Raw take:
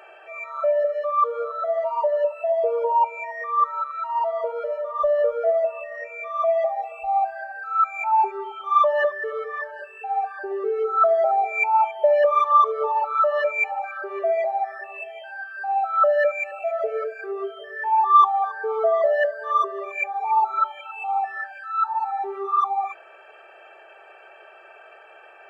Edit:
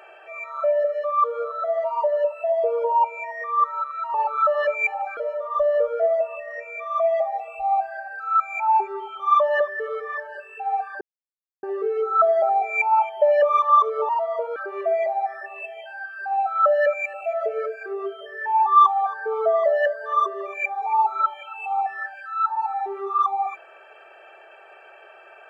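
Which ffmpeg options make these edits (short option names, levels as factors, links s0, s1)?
-filter_complex "[0:a]asplit=6[s0][s1][s2][s3][s4][s5];[s0]atrim=end=4.142[s6];[s1]atrim=start=12.908:end=13.942[s7];[s2]atrim=start=4.608:end=10.45,asetpts=PTS-STARTPTS,afade=t=out:st=5.838:d=0.004:c=hsin,apad=pad_dur=0.62[s8];[s3]atrim=start=10.45:end=12.912,asetpts=PTS-STARTPTS,afade=t=in:d=0.004:c=hsin[s9];[s4]atrim=start=4.138:end=4.612[s10];[s5]atrim=start=13.938[s11];[s6][s7]acrossfade=d=0.004:c1=hsin:c2=hsin[s12];[s8][s9]concat=n=2:v=0:a=1[s13];[s12][s13]acrossfade=d=0.004:c1=hsin:c2=hsin[s14];[s14][s10]acrossfade=d=0.004:c1=hsin:c2=hsin[s15];[s15][s11]acrossfade=d=0.004:c1=hsin:c2=hsin"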